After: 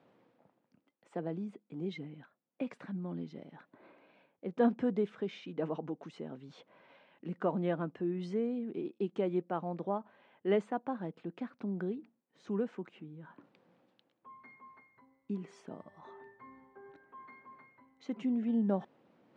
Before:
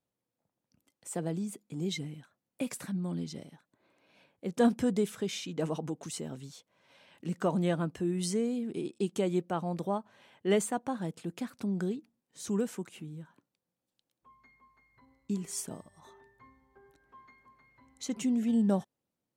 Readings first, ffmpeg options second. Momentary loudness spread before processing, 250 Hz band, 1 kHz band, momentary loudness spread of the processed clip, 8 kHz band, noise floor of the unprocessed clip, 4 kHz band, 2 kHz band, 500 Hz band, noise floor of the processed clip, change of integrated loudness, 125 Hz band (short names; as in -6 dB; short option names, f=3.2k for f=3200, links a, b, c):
15 LU, -4.0 dB, -2.0 dB, 23 LU, under -25 dB, under -85 dBFS, -12.0 dB, -4.5 dB, -2.0 dB, -79 dBFS, -3.5 dB, -6.0 dB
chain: -af "aemphasis=mode=reproduction:type=75fm,areverse,acompressor=mode=upward:threshold=-41dB:ratio=2.5,areverse,highpass=200,lowpass=3k,volume=-2.5dB"